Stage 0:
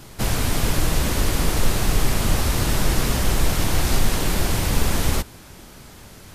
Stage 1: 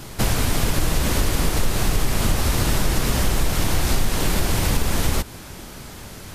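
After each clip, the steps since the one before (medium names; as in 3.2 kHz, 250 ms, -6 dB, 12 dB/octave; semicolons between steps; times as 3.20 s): compression 3:1, threshold -22 dBFS, peak gain reduction 8.5 dB; trim +5.5 dB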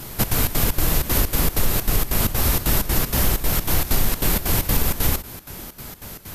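peaking EQ 13 kHz +14 dB 0.38 oct; trance gate "xxx.xx.xx." 192 bpm -12 dB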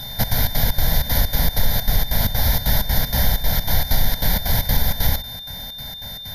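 whistle 3.6 kHz -34 dBFS; static phaser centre 1.8 kHz, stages 8; trim +3 dB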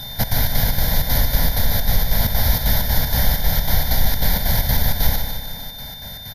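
short-mantissa float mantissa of 6-bit; feedback delay 151 ms, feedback 55%, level -7 dB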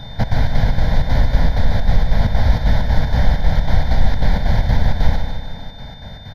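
tape spacing loss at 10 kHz 30 dB; trim +4.5 dB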